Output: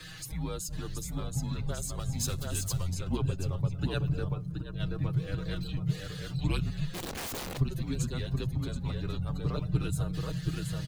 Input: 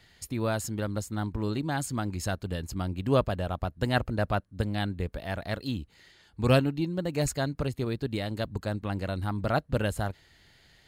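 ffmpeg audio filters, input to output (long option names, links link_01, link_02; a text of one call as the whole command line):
ffmpeg -i in.wav -filter_complex "[0:a]aeval=exprs='val(0)+0.5*0.02*sgn(val(0))':channel_layout=same,asubboost=boost=5.5:cutoff=69,afreqshift=-180,aecho=1:1:727|1454|2181:0.631|0.139|0.0305,acrossover=split=280|3000[link_01][link_02][link_03];[link_02]acompressor=threshold=-50dB:ratio=1.5[link_04];[link_01][link_04][link_03]amix=inputs=3:normalize=0,asettb=1/sr,asplit=3[link_05][link_06][link_07];[link_05]atrim=end=1.994[link_08];[link_06]atrim=start=1.99:end=2.94,asetpts=PTS-STARTPTS,afade=type=in:duration=0.004:curve=qsin,afade=type=out:start_time=0.946:duration=0.004:curve=qsin,highshelf=frequency=3000:gain=7[link_09];[link_07]atrim=start=2.936[link_10];[link_08][link_09]acrossfade=duration=0.004:curve1=hsin:curve2=qsin[link_11];[link_11][link_10]acrossfade=duration=0.004:curve1=qsin:curve2=hsin,asplit=3[link_12][link_13][link_14];[link_12]afade=type=out:start_time=4.32:duration=0.02[link_15];[link_13]acompressor=threshold=-27dB:ratio=12,afade=type=in:start_time=4.32:duration=0.02,afade=type=out:start_time=4.79:duration=0.02[link_16];[link_14]afade=type=in:start_time=4.79:duration=0.02[link_17];[link_15][link_16][link_17]amix=inputs=3:normalize=0,flanger=delay=6.3:depth=1.4:regen=9:speed=0.19:shape=sinusoidal,asplit=3[link_18][link_19][link_20];[link_18]afade=type=out:start_time=6.93:duration=0.02[link_21];[link_19]aeval=exprs='(mod(35.5*val(0)+1,2)-1)/35.5':channel_layout=same,afade=type=in:start_time=6.93:duration=0.02,afade=type=out:start_time=7.57:duration=0.02[link_22];[link_20]afade=type=in:start_time=7.57:duration=0.02[link_23];[link_21][link_22][link_23]amix=inputs=3:normalize=0,afftdn=noise_reduction=18:noise_floor=-51,volume=-1dB" out.wav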